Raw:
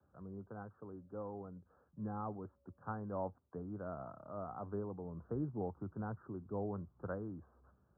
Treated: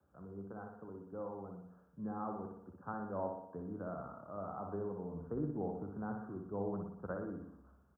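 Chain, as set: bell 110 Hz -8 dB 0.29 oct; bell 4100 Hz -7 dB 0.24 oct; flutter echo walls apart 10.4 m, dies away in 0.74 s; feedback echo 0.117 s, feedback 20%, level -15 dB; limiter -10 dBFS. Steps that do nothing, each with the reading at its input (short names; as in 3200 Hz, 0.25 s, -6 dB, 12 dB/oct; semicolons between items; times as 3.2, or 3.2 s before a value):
bell 4100 Hz: input band ends at 1600 Hz; limiter -10 dBFS: input peak -25.5 dBFS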